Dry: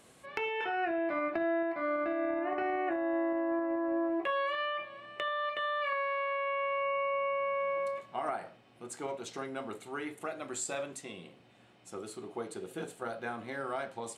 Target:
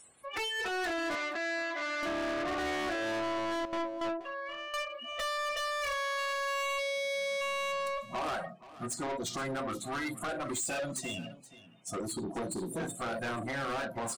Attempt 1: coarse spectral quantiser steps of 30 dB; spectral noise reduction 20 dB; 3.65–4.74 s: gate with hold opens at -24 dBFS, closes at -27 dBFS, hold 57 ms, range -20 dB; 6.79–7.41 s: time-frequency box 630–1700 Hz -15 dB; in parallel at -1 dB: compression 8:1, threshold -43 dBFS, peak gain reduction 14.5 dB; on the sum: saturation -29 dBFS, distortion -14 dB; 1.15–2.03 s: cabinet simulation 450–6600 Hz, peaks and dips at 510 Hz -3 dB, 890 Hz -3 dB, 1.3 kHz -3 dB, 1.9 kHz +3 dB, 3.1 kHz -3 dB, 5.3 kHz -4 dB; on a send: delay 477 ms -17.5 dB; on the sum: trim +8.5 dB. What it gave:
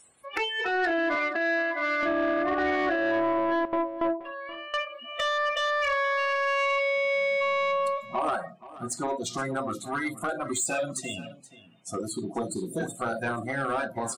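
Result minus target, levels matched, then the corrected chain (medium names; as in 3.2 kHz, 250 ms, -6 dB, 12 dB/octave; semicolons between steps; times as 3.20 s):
saturation: distortion -9 dB
coarse spectral quantiser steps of 30 dB; spectral noise reduction 20 dB; 3.65–4.74 s: gate with hold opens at -24 dBFS, closes at -27 dBFS, hold 57 ms, range -20 dB; 6.79–7.41 s: time-frequency box 630–1700 Hz -15 dB; in parallel at -1 dB: compression 8:1, threshold -43 dBFS, peak gain reduction 14.5 dB; on the sum: saturation -40.5 dBFS, distortion -5 dB; 1.15–2.03 s: cabinet simulation 450–6600 Hz, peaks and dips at 510 Hz -3 dB, 890 Hz -3 dB, 1.3 kHz -3 dB, 1.9 kHz +3 dB, 3.1 kHz -3 dB, 5.3 kHz -4 dB; on a send: delay 477 ms -17.5 dB; on the sum: trim +8.5 dB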